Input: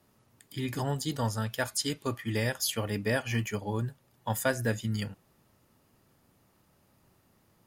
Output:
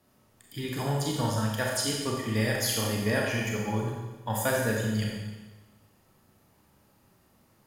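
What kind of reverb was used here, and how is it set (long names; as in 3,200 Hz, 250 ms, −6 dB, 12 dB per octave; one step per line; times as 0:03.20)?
four-comb reverb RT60 1.2 s, combs from 29 ms, DRR −2 dB
level −1 dB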